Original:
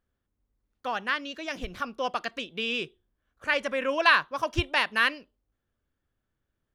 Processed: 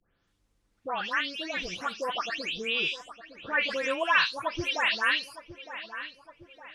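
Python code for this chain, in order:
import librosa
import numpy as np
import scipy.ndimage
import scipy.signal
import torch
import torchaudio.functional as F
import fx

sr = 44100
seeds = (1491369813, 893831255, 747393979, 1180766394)

y = fx.spec_delay(x, sr, highs='late', ms=275)
y = scipy.signal.sosfilt(scipy.signal.butter(2, 8400.0, 'lowpass', fs=sr, output='sos'), y)
y = fx.tilt_shelf(y, sr, db=-3.5, hz=1300.0)
y = fx.echo_filtered(y, sr, ms=911, feedback_pct=30, hz=2500.0, wet_db=-17)
y = fx.band_squash(y, sr, depth_pct=40)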